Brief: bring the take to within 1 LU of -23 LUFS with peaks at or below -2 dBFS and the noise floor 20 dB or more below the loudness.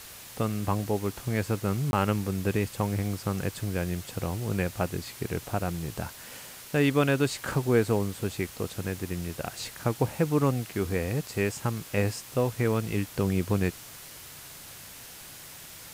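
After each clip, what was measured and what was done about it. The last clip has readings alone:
dropouts 1; longest dropout 21 ms; noise floor -46 dBFS; noise floor target -49 dBFS; loudness -29.0 LUFS; peak level -11.0 dBFS; loudness target -23.0 LUFS
-> interpolate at 1.91 s, 21 ms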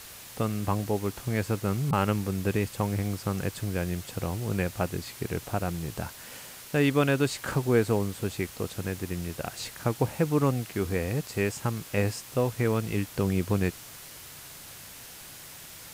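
dropouts 0; noise floor -46 dBFS; noise floor target -49 dBFS
-> noise reduction 6 dB, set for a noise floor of -46 dBFS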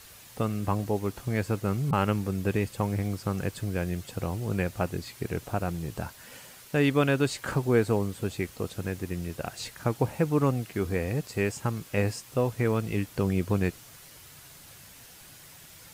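noise floor -50 dBFS; loudness -29.5 LUFS; peak level -11.0 dBFS; loudness target -23.0 LUFS
-> trim +6.5 dB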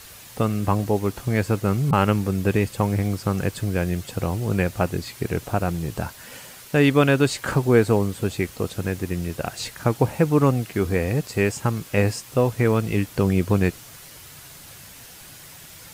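loudness -23.0 LUFS; peak level -4.5 dBFS; noise floor -44 dBFS

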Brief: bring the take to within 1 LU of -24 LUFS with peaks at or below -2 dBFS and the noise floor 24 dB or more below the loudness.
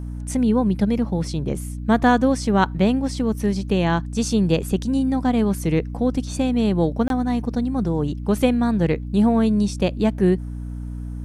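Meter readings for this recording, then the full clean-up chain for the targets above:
dropouts 1; longest dropout 22 ms; hum 60 Hz; highest harmonic 300 Hz; hum level -28 dBFS; loudness -21.0 LUFS; peak level -3.0 dBFS; loudness target -24.0 LUFS
-> interpolate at 7.08 s, 22 ms; de-hum 60 Hz, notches 5; trim -3 dB

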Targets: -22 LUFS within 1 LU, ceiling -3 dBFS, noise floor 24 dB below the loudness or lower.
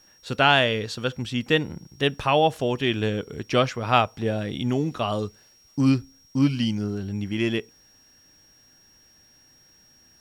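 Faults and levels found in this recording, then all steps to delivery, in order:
steady tone 5.6 kHz; tone level -55 dBFS; loudness -24.0 LUFS; peak level -4.0 dBFS; loudness target -22.0 LUFS
-> band-stop 5.6 kHz, Q 30; trim +2 dB; peak limiter -3 dBFS

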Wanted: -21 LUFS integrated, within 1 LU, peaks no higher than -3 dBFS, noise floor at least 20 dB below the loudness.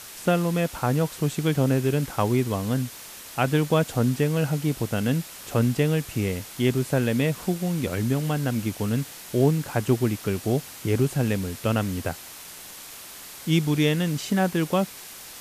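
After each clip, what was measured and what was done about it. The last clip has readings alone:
noise floor -42 dBFS; noise floor target -45 dBFS; loudness -25.0 LUFS; peak level -8.5 dBFS; loudness target -21.0 LUFS
-> noise reduction 6 dB, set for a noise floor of -42 dBFS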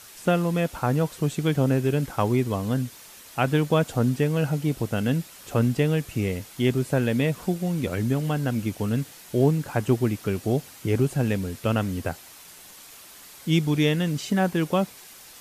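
noise floor -47 dBFS; loudness -25.0 LUFS; peak level -8.5 dBFS; loudness target -21.0 LUFS
-> trim +4 dB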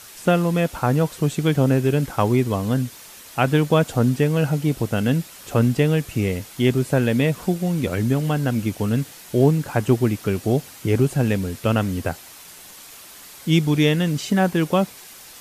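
loudness -21.0 LUFS; peak level -4.5 dBFS; noise floor -43 dBFS

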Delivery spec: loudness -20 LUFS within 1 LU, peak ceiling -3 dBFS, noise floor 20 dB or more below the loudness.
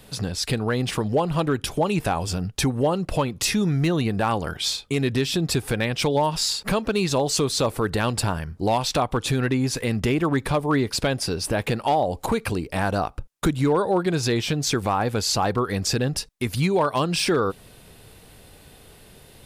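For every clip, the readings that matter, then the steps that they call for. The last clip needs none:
clipped samples 0.4%; clipping level -13.0 dBFS; loudness -23.5 LUFS; peak level -13.0 dBFS; loudness target -20.0 LUFS
-> clip repair -13 dBFS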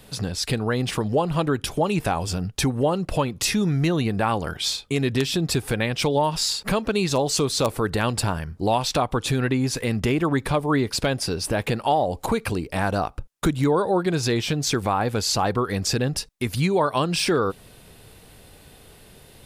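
clipped samples 0.0%; loudness -23.5 LUFS; peak level -4.0 dBFS; loudness target -20.0 LUFS
-> trim +3.5 dB; peak limiter -3 dBFS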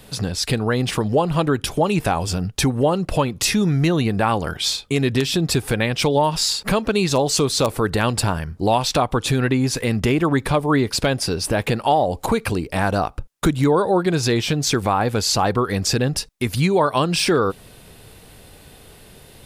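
loudness -20.0 LUFS; peak level -3.0 dBFS; noise floor -46 dBFS

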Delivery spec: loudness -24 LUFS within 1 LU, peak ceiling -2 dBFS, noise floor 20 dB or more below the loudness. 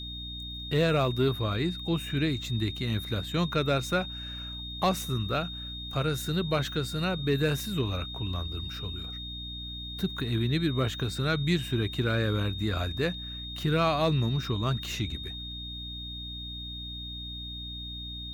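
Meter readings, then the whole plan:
hum 60 Hz; highest harmonic 300 Hz; hum level -39 dBFS; steady tone 3.7 kHz; tone level -38 dBFS; loudness -30.0 LUFS; peak level -14.5 dBFS; loudness target -24.0 LUFS
-> de-hum 60 Hz, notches 5; band-stop 3.7 kHz, Q 30; trim +6 dB

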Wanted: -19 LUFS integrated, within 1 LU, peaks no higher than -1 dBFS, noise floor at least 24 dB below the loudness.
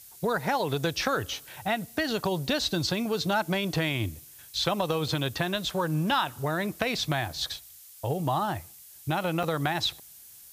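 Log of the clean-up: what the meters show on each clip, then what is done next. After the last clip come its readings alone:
dropouts 2; longest dropout 4.5 ms; noise floor -50 dBFS; noise floor target -53 dBFS; loudness -29.0 LUFS; peak level -8.0 dBFS; loudness target -19.0 LUFS
-> interpolate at 5.08/9.43 s, 4.5 ms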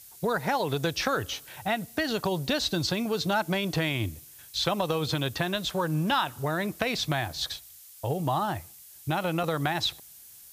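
dropouts 0; noise floor -50 dBFS; noise floor target -53 dBFS
-> noise print and reduce 6 dB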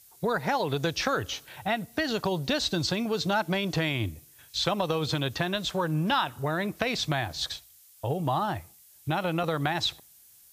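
noise floor -56 dBFS; loudness -29.0 LUFS; peak level -8.0 dBFS; loudness target -19.0 LUFS
-> trim +10 dB; peak limiter -1 dBFS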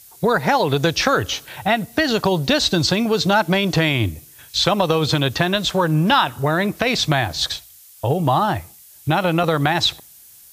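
loudness -19.0 LUFS; peak level -1.0 dBFS; noise floor -46 dBFS

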